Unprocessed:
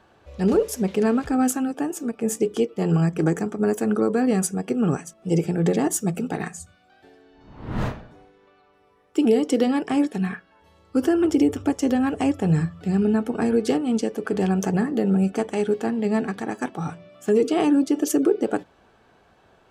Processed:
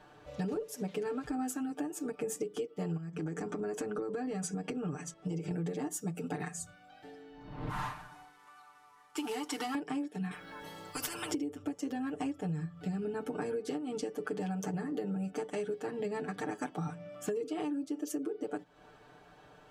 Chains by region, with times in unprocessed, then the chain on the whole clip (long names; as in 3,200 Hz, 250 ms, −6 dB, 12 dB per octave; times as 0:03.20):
0:02.97–0:05.51: low-pass filter 7,500 Hz + downward compressor 5 to 1, threshold −26 dBFS
0:07.69–0:09.75: variable-slope delta modulation 64 kbit/s + low shelf with overshoot 700 Hz −10 dB, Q 3
0:10.31–0:11.31: high-shelf EQ 10,000 Hz +8.5 dB + downward compressor 3 to 1, threshold −21 dBFS + every bin compressed towards the loudest bin 4 to 1
whole clip: comb filter 6.7 ms, depth 94%; downward compressor 12 to 1, threshold −30 dBFS; level −3 dB